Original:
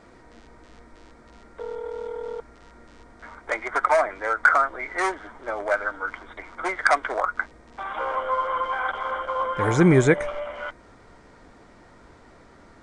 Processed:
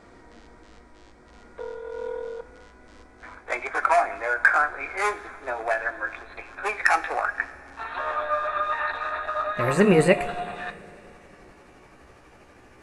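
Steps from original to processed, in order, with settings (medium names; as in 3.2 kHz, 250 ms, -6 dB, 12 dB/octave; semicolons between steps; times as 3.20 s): pitch bend over the whole clip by +4 st starting unshifted; two-slope reverb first 0.4 s, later 3.7 s, from -16 dB, DRR 10.5 dB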